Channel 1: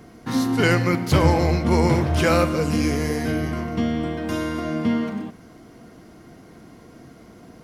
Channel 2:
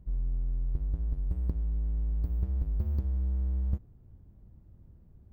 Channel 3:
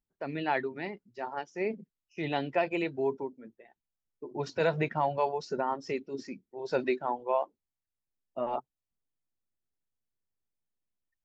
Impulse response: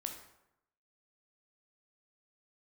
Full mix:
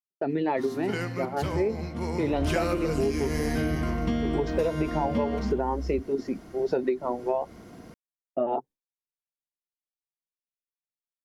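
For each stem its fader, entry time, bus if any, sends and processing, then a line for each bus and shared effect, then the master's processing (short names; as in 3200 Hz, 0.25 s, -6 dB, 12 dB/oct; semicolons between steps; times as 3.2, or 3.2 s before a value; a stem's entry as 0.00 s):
2.27 s -13 dB -> 2.47 s -1 dB, 0.30 s, no send, dry
-3.0 dB, 2.25 s, no send, dry
-0.5 dB, 0.00 s, no send, bell 390 Hz +14 dB 2.8 oct; expander -37 dBFS; cascading phaser rising 1.7 Hz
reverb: off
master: compressor 10:1, threshold -22 dBFS, peak gain reduction 11 dB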